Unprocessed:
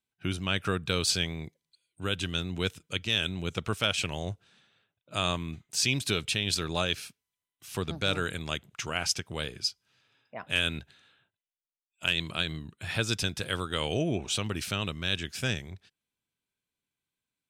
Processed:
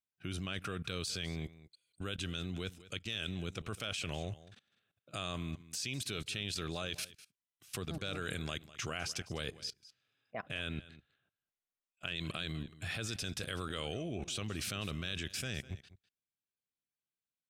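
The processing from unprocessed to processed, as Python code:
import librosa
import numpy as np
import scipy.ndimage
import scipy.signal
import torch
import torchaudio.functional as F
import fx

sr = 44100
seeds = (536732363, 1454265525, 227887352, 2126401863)

y = fx.notch(x, sr, hz=920.0, q=6.0)
y = fx.high_shelf(y, sr, hz=4000.0, db=-10.5, at=(10.4, 12.16))
y = fx.level_steps(y, sr, step_db=21)
y = y + 10.0 ** (-17.5 / 20.0) * np.pad(y, (int(202 * sr / 1000.0), 0))[:len(y)]
y = y * 10.0 ** (3.0 / 20.0)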